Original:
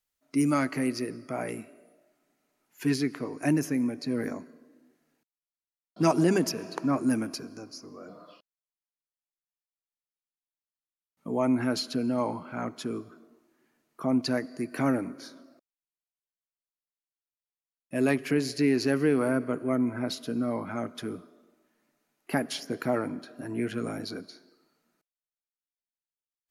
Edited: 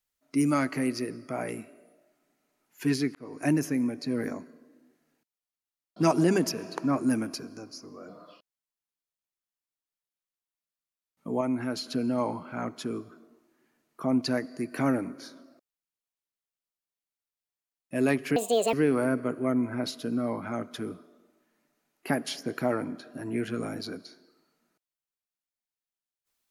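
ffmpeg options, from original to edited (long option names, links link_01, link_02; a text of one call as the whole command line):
ffmpeg -i in.wav -filter_complex "[0:a]asplit=6[link_01][link_02][link_03][link_04][link_05][link_06];[link_01]atrim=end=3.15,asetpts=PTS-STARTPTS,afade=type=out:start_time=3.146:duration=0.004:curve=hsin[link_07];[link_02]atrim=start=3.15:end=11.412,asetpts=PTS-STARTPTS,afade=type=in:duration=0.26[link_08];[link_03]atrim=start=11.408:end=11.862,asetpts=PTS-STARTPTS,volume=-4dB[link_09];[link_04]atrim=start=11.858:end=18.364[link_10];[link_05]atrim=start=18.36:end=18.97,asetpts=PTS-STARTPTS,asetrate=72324,aresample=44100,atrim=end_sample=16403,asetpts=PTS-STARTPTS[link_11];[link_06]atrim=start=18.966[link_12];[link_07][link_08]concat=n=2:v=0:a=1[link_13];[link_13][link_09]acrossfade=duration=0.004:curve1=hsin:curve2=hsin[link_14];[link_14][link_10]acrossfade=duration=0.004:curve1=hsin:curve2=hsin[link_15];[link_15][link_11]acrossfade=duration=0.004:curve1=hsin:curve2=hsin[link_16];[link_16][link_12]acrossfade=duration=0.004:curve1=hsin:curve2=hsin" out.wav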